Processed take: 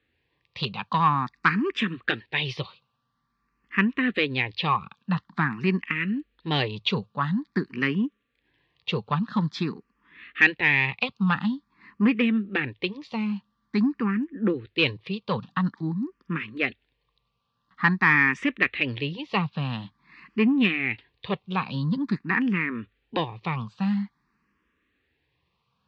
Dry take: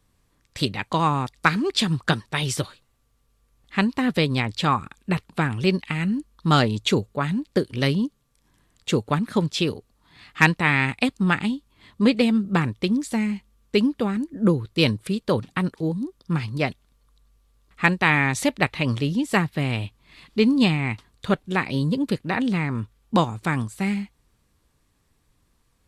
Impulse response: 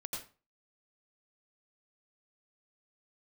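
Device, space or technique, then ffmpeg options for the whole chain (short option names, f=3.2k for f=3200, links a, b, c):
barber-pole phaser into a guitar amplifier: -filter_complex "[0:a]asplit=2[a][b];[b]afreqshift=0.48[c];[a][c]amix=inputs=2:normalize=1,asoftclip=type=tanh:threshold=-12.5dB,highpass=97,equalizer=f=100:t=q:w=4:g=-8,equalizer=f=200:t=q:w=4:g=3,equalizer=f=630:t=q:w=4:g=-8,equalizer=f=1.1k:t=q:w=4:g=6,equalizer=f=1.8k:t=q:w=4:g=7,equalizer=f=2.6k:t=q:w=4:g=6,lowpass=f=4.3k:w=0.5412,lowpass=f=4.3k:w=1.3066,volume=-1dB"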